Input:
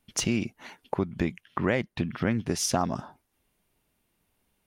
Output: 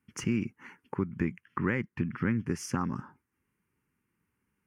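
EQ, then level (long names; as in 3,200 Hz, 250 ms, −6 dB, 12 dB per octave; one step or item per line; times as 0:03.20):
high-pass filter 87 Hz
low-pass filter 2,800 Hz 6 dB per octave
phaser with its sweep stopped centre 1,600 Hz, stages 4
0.0 dB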